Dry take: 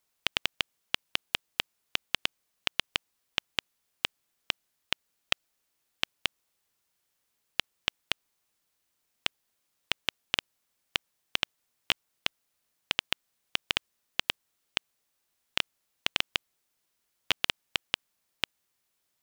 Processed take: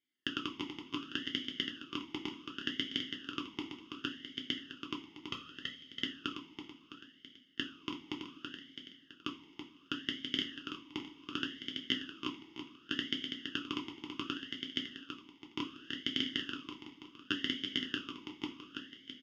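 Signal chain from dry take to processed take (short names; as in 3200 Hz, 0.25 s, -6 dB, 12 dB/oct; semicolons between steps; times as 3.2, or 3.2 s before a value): minimum comb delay 0.62 ms; on a send: feedback echo 0.33 s, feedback 50%, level -6 dB; on the sum: two-slope reverb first 0.31 s, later 2.5 s, from -18 dB, DRR 0 dB; vowel sweep i-u 0.68 Hz; gain +7 dB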